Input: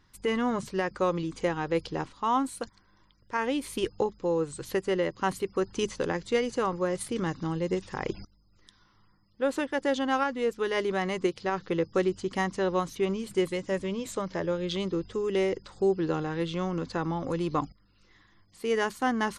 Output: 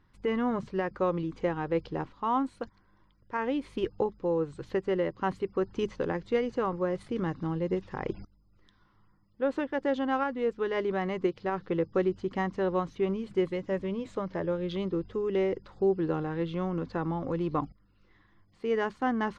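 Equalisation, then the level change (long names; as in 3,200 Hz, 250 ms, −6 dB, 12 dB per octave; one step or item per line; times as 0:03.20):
head-to-tape spacing loss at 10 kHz 21 dB
high-shelf EQ 6,800 Hz −8.5 dB
0.0 dB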